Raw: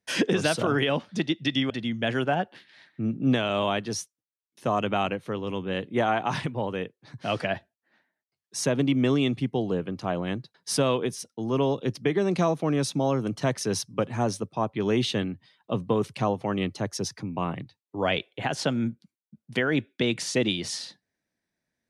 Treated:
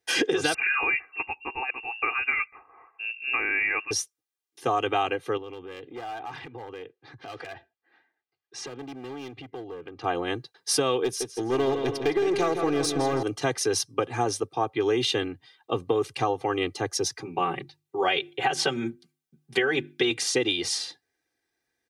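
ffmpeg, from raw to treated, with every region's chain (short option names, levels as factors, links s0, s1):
-filter_complex "[0:a]asettb=1/sr,asplit=3[s0][s1][s2];[s0]atrim=end=0.544[s3];[s1]atrim=start=0.54:end=3.91,asetpts=PTS-STARTPTS,afade=t=in:d=0.004:c=qsin,afade=t=out:st=3.366:d=0.004:c=qsin,highpass=f=590:p=1,lowpass=f=2500:t=q:w=0.5098,lowpass=f=2500:t=q:w=0.6013,lowpass=f=2500:t=q:w=0.9,lowpass=f=2500:t=q:w=2.563,afreqshift=-2900,bandreject=f=1400:w=7.2[s4];[s2]atrim=start=3.906[s5];[s3][s4]acrossfade=d=0.004:c1=hsin:c2=qsin[s6];[s6][s5]acrossfade=d=0.004:c1=qsin:c2=hsin,asettb=1/sr,asplit=3[s7][s8][s9];[s7]atrim=end=5.374[s10];[s8]atrim=start=5.37:end=10.04,asetpts=PTS-STARTPTS,afade=t=in:d=0.004:c=qsin,afade=t=out:st=4.666:d=0.004:c=qsin,lowpass=3400,asoftclip=type=hard:threshold=0.0668,acompressor=threshold=0.0126:ratio=12:attack=3.2:release=140:knee=1:detection=peak[s11];[s9]atrim=start=10.036[s12];[s10][s11]acrossfade=d=0.004:c1=hsin:c2=qsin[s13];[s13][s12]acrossfade=d=0.004:c1=qsin:c2=hsin,asettb=1/sr,asplit=3[s14][s15][s16];[s14]atrim=end=11.044[s17];[s15]atrim=start=11.04:end=13.23,asetpts=PTS-STARTPTS,afade=t=in:d=0.004:c=qsin,afade=t=out:st=2.186:d=0.004:c=qsin,aeval=exprs='clip(val(0),-1,0.0562)':c=same,asplit=2[s18][s19];[s19]adelay=163,lowpass=f=4400:p=1,volume=0.422,asplit=2[s20][s21];[s21]adelay=163,lowpass=f=4400:p=1,volume=0.55,asplit=2[s22][s23];[s23]adelay=163,lowpass=f=4400:p=1,volume=0.55,asplit=2[s24][s25];[s25]adelay=163,lowpass=f=4400:p=1,volume=0.55,asplit=2[s26][s27];[s27]adelay=163,lowpass=f=4400:p=1,volume=0.55,asplit=2[s28][s29];[s29]adelay=163,lowpass=f=4400:p=1,volume=0.55,asplit=2[s30][s31];[s31]adelay=163,lowpass=f=4400:p=1,volume=0.55[s32];[s18][s20][s22][s24][s26][s28][s30][s32]amix=inputs=8:normalize=0,atrim=end_sample=96579[s33];[s16]atrim=start=13.226[s34];[s17][s33]acrossfade=d=0.004:c1=hsin:c2=qsin[s35];[s35][s34]acrossfade=d=0.004:c1=qsin:c2=hsin,asettb=1/sr,asplit=3[s36][s37][s38];[s36]atrim=end=17.224[s39];[s37]atrim=start=17.22:end=20.11,asetpts=PTS-STARTPTS,afade=t=in:d=0.004:c=qsin,afade=t=out:st=2.886:d=0.004:c=qsin,bandreject=f=50:t=h:w=6,bandreject=f=100:t=h:w=6,bandreject=f=150:t=h:w=6,bandreject=f=200:t=h:w=6,bandreject=f=250:t=h:w=6,bandreject=f=300:t=h:w=6,bandreject=f=350:t=h:w=6,aecho=1:1:5.2:0.72,atrim=end_sample=127449[s40];[s38]atrim=start=20.106[s41];[s39][s40]acrossfade=d=0.004:c1=hsin:c2=qsin[s42];[s42][s41]acrossfade=d=0.004:c1=qsin:c2=hsin,lowshelf=f=170:g=-10,aecho=1:1:2.5:0.96,acompressor=threshold=0.0794:ratio=6,volume=1.26"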